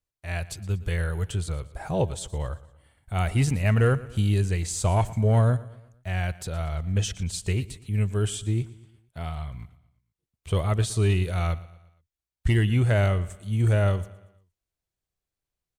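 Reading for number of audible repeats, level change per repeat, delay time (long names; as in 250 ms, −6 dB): 3, −6.5 dB, 117 ms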